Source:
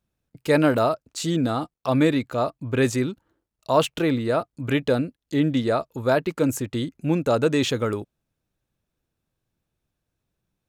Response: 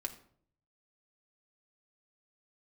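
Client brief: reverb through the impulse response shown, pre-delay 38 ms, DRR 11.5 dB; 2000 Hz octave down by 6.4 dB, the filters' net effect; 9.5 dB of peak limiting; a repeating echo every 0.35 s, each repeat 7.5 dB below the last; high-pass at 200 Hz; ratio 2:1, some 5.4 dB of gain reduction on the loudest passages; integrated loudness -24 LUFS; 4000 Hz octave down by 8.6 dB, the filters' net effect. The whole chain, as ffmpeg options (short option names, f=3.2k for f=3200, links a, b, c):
-filter_complex "[0:a]highpass=200,equalizer=f=2k:t=o:g=-6.5,equalizer=f=4k:t=o:g=-8.5,acompressor=threshold=-25dB:ratio=2,alimiter=limit=-22dB:level=0:latency=1,aecho=1:1:350|700|1050|1400|1750:0.422|0.177|0.0744|0.0312|0.0131,asplit=2[a][b];[1:a]atrim=start_sample=2205,adelay=38[c];[b][c]afir=irnorm=-1:irlink=0,volume=-11dB[d];[a][d]amix=inputs=2:normalize=0,volume=7.5dB"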